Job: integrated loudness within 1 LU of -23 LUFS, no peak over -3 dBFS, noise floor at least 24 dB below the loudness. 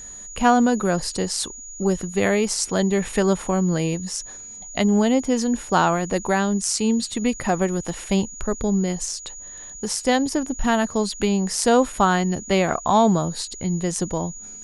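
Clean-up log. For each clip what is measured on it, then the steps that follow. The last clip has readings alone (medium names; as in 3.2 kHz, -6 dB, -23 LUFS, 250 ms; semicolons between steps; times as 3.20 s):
steady tone 6.8 kHz; tone level -36 dBFS; loudness -22.0 LUFS; peak level -4.0 dBFS; loudness target -23.0 LUFS
-> band-stop 6.8 kHz, Q 30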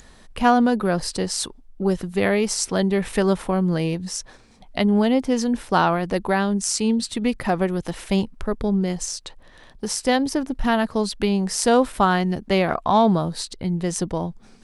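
steady tone not found; loudness -22.0 LUFS; peak level -4.0 dBFS; loudness target -23.0 LUFS
-> trim -1 dB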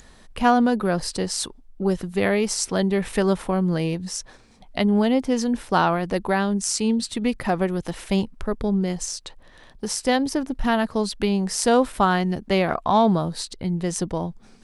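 loudness -23.0 LUFS; peak level -5.0 dBFS; noise floor -50 dBFS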